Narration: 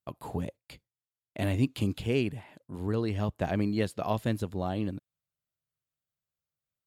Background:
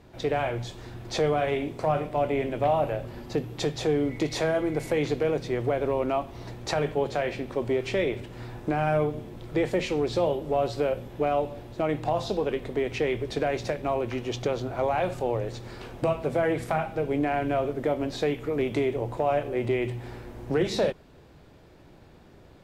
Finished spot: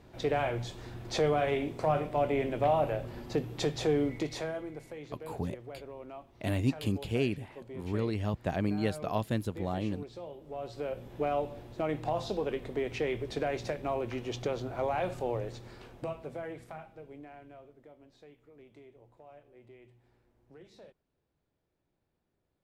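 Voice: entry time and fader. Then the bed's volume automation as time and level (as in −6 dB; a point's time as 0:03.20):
5.05 s, −2.0 dB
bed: 0:04.02 −3 dB
0:04.98 −19 dB
0:10.31 −19 dB
0:11.14 −5.5 dB
0:15.39 −5.5 dB
0:17.91 −29 dB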